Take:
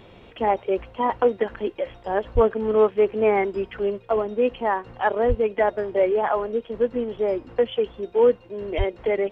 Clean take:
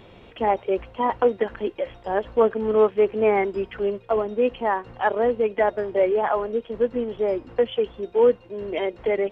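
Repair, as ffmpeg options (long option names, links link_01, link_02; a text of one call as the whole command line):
ffmpeg -i in.wav -filter_complex "[0:a]asplit=3[link_01][link_02][link_03];[link_01]afade=type=out:start_time=2.34:duration=0.02[link_04];[link_02]highpass=frequency=140:width=0.5412,highpass=frequency=140:width=1.3066,afade=type=in:start_time=2.34:duration=0.02,afade=type=out:start_time=2.46:duration=0.02[link_05];[link_03]afade=type=in:start_time=2.46:duration=0.02[link_06];[link_04][link_05][link_06]amix=inputs=3:normalize=0,asplit=3[link_07][link_08][link_09];[link_07]afade=type=out:start_time=5.28:duration=0.02[link_10];[link_08]highpass=frequency=140:width=0.5412,highpass=frequency=140:width=1.3066,afade=type=in:start_time=5.28:duration=0.02,afade=type=out:start_time=5.4:duration=0.02[link_11];[link_09]afade=type=in:start_time=5.4:duration=0.02[link_12];[link_10][link_11][link_12]amix=inputs=3:normalize=0,asplit=3[link_13][link_14][link_15];[link_13]afade=type=out:start_time=8.77:duration=0.02[link_16];[link_14]highpass=frequency=140:width=0.5412,highpass=frequency=140:width=1.3066,afade=type=in:start_time=8.77:duration=0.02,afade=type=out:start_time=8.89:duration=0.02[link_17];[link_15]afade=type=in:start_time=8.89:duration=0.02[link_18];[link_16][link_17][link_18]amix=inputs=3:normalize=0" out.wav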